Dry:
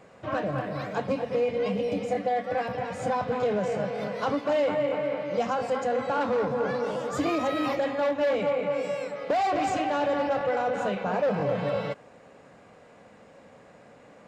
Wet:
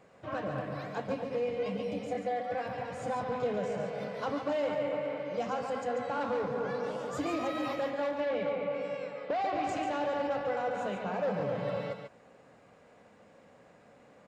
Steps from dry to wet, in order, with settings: 8.20–9.69 s: low-pass 4.3 kHz 12 dB/octave; delay 141 ms -6.5 dB; trim -7 dB

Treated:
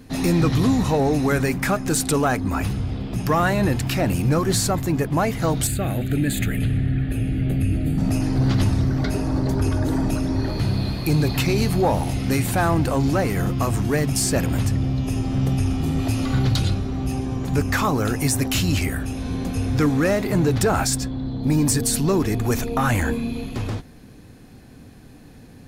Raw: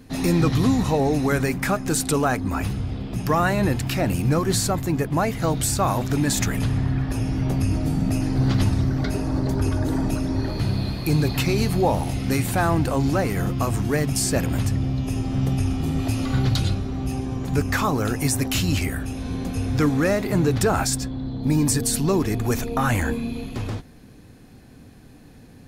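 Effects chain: saturation -11.5 dBFS, distortion -23 dB; 5.67–7.98 s: static phaser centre 2.4 kHz, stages 4; trim +2 dB

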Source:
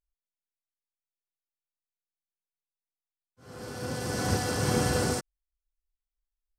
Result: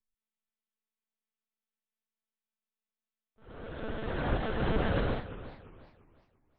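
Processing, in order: vibrato 0.54 Hz 24 cents; monotone LPC vocoder at 8 kHz 220 Hz; modulated delay 350 ms, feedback 33%, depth 215 cents, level -14 dB; trim -2 dB

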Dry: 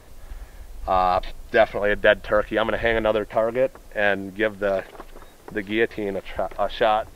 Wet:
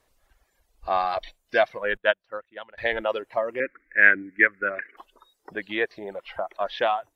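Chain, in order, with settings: 3.60–4.97 s: FFT filter 160 Hz 0 dB, 300 Hz +7 dB, 890 Hz -14 dB, 1.4 kHz +8 dB, 2.1 kHz +14 dB, 3.2 kHz -14 dB; spectral noise reduction 14 dB; bass shelf 340 Hz -11.5 dB; reverb removal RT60 1.4 s; 1.97–2.78 s: upward expansion 2.5:1, over -29 dBFS; trim -1 dB

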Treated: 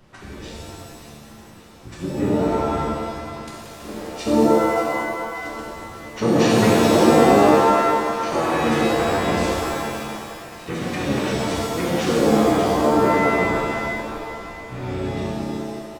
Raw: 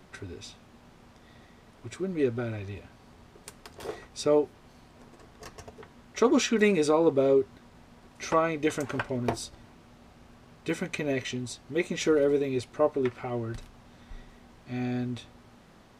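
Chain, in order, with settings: two-band feedback delay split 490 Hz, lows 99 ms, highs 583 ms, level -10 dB; harmony voices -12 st -1 dB, -5 st -1 dB; pitch-shifted reverb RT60 1.7 s, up +7 st, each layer -2 dB, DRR -4.5 dB; trim -5 dB

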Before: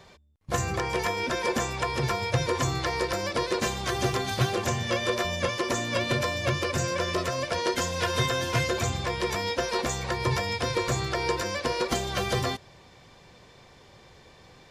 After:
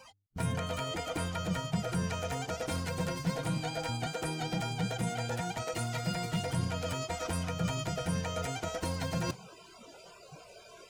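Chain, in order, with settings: spectral noise reduction 23 dB; speed mistake 33 rpm record played at 45 rpm; reverse; compression 6:1, threshold -39 dBFS, peak gain reduction 18 dB; reverse; bass shelf 270 Hz +11 dB; trim +3 dB

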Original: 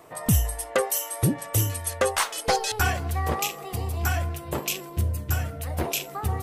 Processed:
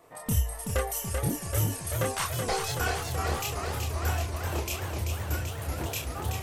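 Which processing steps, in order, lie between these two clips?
chorus voices 6, 0.48 Hz, delay 29 ms, depth 2.4 ms; modulated delay 382 ms, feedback 77%, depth 141 cents, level -5.5 dB; trim -3.5 dB

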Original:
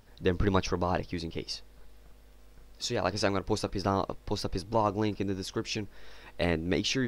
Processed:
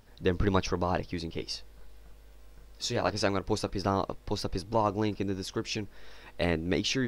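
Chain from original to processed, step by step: 1.37–3.10 s: doubling 18 ms -7 dB

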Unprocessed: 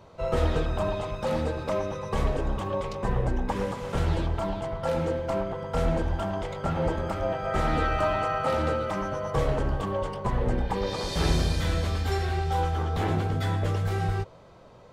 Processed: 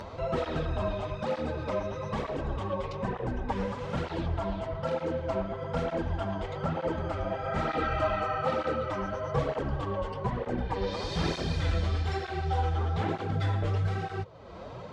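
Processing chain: low-pass 5.2 kHz 12 dB/octave; upward compressor, threshold -27 dBFS; cancelling through-zero flanger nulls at 1.1 Hz, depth 8 ms

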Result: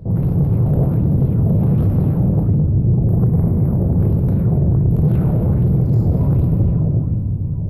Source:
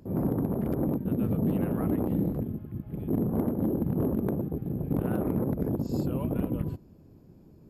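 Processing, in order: local Wiener filter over 25 samples; recorder AGC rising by 5.4 dB/s; 3.06–4.00 s: high-order bell 4.6 kHz -14.5 dB; compression, threshold -32 dBFS, peak gain reduction 9.5 dB; resonant low shelf 180 Hz +12.5 dB, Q 1.5; feedback echo behind a high-pass 870 ms, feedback 68%, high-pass 5 kHz, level -18 dB; simulated room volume 170 m³, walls hard, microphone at 0.65 m; saturation -17 dBFS, distortion -14 dB; sweeping bell 1.3 Hz 570–6300 Hz +7 dB; trim +8 dB

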